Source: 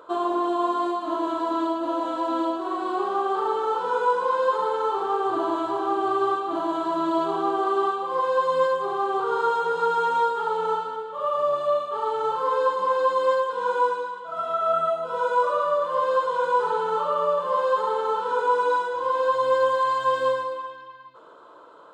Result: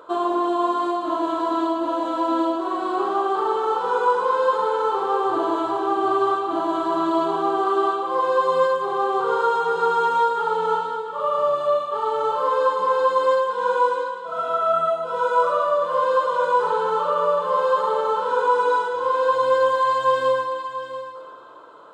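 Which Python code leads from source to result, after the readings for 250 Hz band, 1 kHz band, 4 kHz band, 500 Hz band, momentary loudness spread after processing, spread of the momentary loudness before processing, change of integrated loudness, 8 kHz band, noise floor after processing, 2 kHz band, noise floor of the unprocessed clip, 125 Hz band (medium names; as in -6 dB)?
+3.0 dB, +3.0 dB, +3.0 dB, +3.0 dB, 5 LU, 5 LU, +3.0 dB, no reading, -34 dBFS, +3.0 dB, -43 dBFS, +3.0 dB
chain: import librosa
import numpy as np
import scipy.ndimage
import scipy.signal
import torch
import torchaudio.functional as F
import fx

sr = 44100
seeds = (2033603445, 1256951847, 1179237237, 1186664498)

y = x + 10.0 ** (-11.5 / 20.0) * np.pad(x, (int(688 * sr / 1000.0), 0))[:len(x)]
y = F.gain(torch.from_numpy(y), 2.5).numpy()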